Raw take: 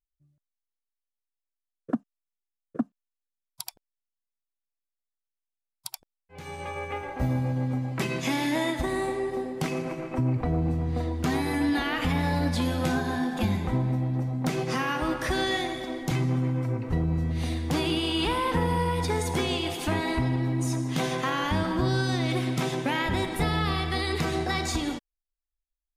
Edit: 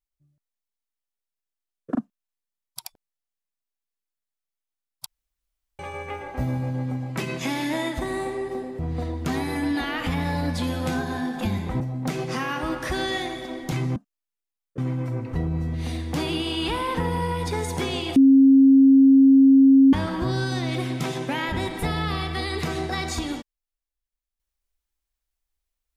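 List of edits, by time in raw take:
1.95–2.77 move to 16.35
5.88–6.61 room tone
9.61–10.77 cut
13.78–14.19 cut
19.73–21.5 bleep 270 Hz -10 dBFS

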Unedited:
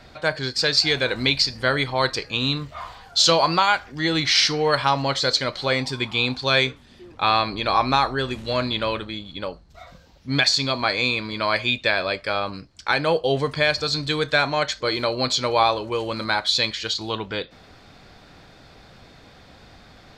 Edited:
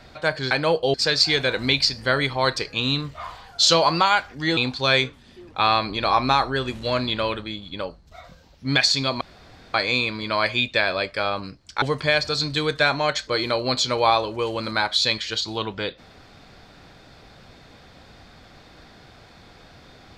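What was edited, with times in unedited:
4.14–6.2 cut
10.84 insert room tone 0.53 s
12.92–13.35 move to 0.51

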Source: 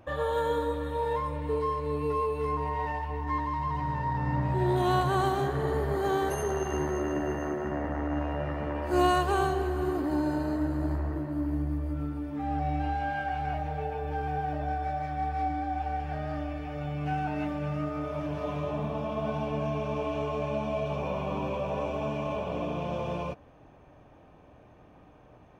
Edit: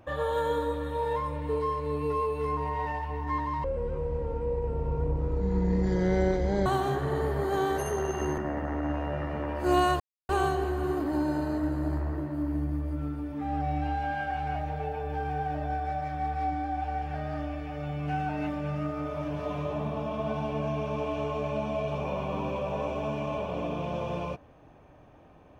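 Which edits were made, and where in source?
3.64–5.18 speed 51%
6.9–7.65 cut
9.27 insert silence 0.29 s

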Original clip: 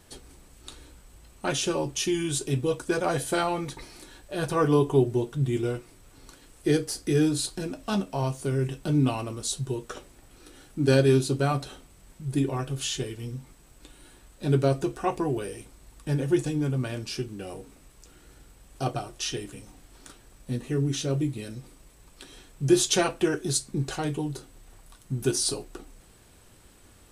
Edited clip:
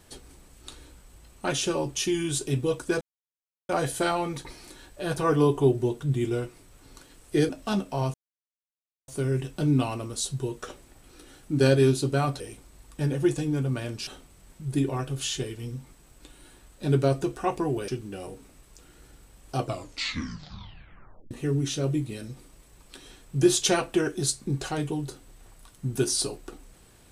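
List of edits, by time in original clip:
3.01 insert silence 0.68 s
6.81–7.7 cut
8.35 insert silence 0.94 s
15.48–17.15 move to 11.67
18.85 tape stop 1.73 s

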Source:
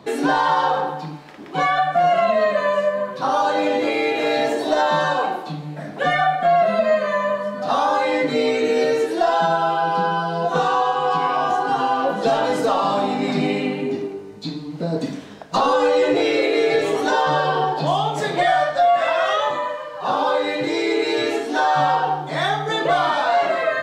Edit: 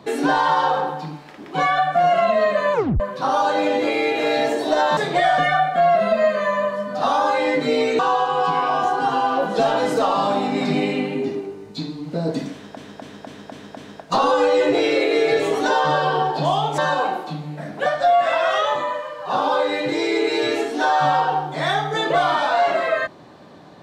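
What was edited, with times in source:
2.73 tape stop 0.27 s
4.97–6.05 swap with 18.2–18.61
8.66–10.66 cut
15.19–15.44 loop, 6 plays

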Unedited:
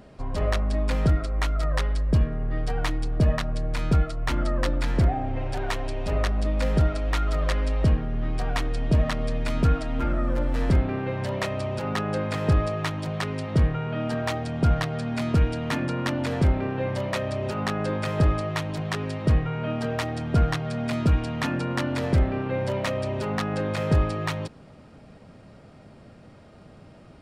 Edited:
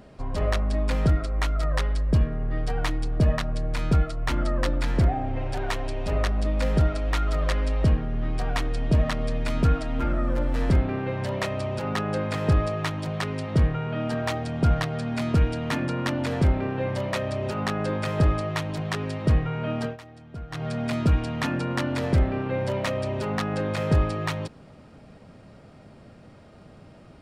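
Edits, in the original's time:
19.84–20.63 dip -17 dB, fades 0.13 s

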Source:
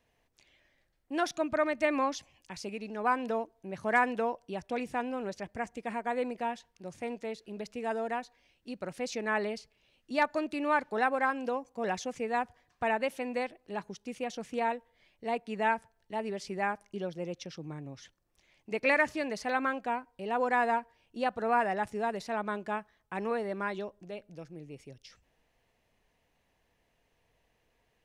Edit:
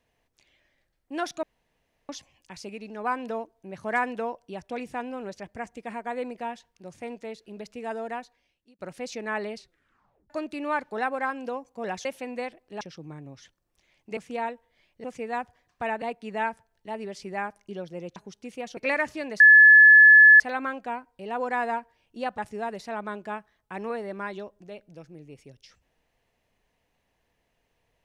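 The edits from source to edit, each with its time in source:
1.43–2.09 room tone
8.2–8.79 fade out
9.56 tape stop 0.74 s
12.05–13.03 move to 15.27
13.79–14.4 swap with 17.41–18.77
19.4 add tone 1720 Hz -9 dBFS 1.00 s
21.38–21.79 cut

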